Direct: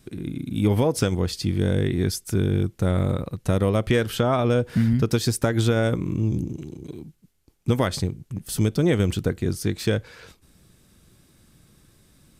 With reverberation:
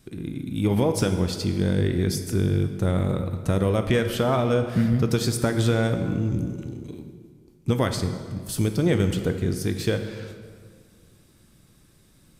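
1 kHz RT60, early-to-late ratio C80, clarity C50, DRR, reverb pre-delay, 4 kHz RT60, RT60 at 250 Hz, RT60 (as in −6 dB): 1.9 s, 9.5 dB, 8.5 dB, 7.0 dB, 11 ms, 1.4 s, 2.0 s, 1.9 s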